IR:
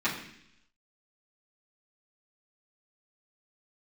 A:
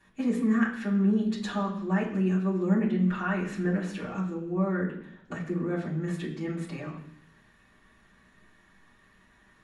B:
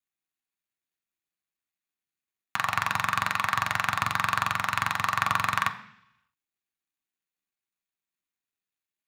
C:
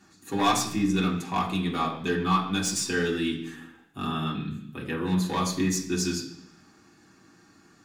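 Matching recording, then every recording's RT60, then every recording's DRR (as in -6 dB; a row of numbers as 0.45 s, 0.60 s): A; 0.70 s, 0.70 s, 0.70 s; -11.0 dB, 5.5 dB, -4.5 dB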